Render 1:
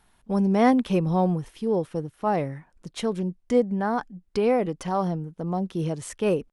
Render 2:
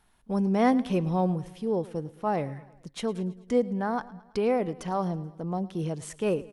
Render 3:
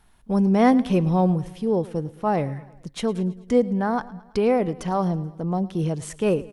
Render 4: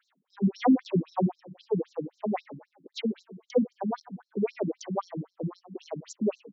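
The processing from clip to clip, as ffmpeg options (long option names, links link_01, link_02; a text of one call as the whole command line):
ffmpeg -i in.wav -af "aecho=1:1:109|218|327|436:0.106|0.0572|0.0309|0.0167,volume=-3.5dB" out.wav
ffmpeg -i in.wav -af "lowshelf=frequency=150:gain=5.5,volume=4.5dB" out.wav
ffmpeg -i in.wav -af "afftfilt=real='re*between(b*sr/1024,210*pow(5500/210,0.5+0.5*sin(2*PI*3.8*pts/sr))/1.41,210*pow(5500/210,0.5+0.5*sin(2*PI*3.8*pts/sr))*1.41)':imag='im*between(b*sr/1024,210*pow(5500/210,0.5+0.5*sin(2*PI*3.8*pts/sr))/1.41,210*pow(5500/210,0.5+0.5*sin(2*PI*3.8*pts/sr))*1.41)':win_size=1024:overlap=0.75" out.wav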